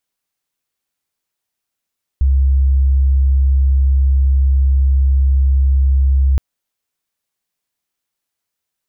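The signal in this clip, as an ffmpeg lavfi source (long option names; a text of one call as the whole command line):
ffmpeg -f lavfi -i "aevalsrc='0.355*sin(2*PI*67.3*t)':duration=4.17:sample_rate=44100" out.wav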